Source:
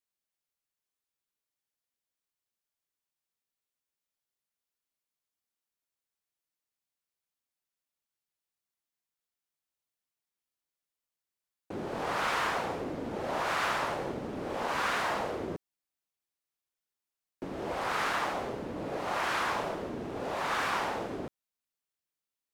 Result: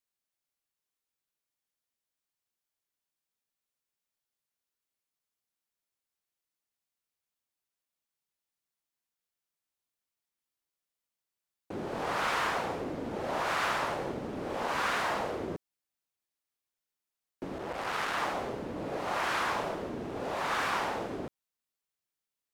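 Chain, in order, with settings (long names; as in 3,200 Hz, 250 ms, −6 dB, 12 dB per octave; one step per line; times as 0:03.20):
0:17.58–0:18.18: saturating transformer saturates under 1,600 Hz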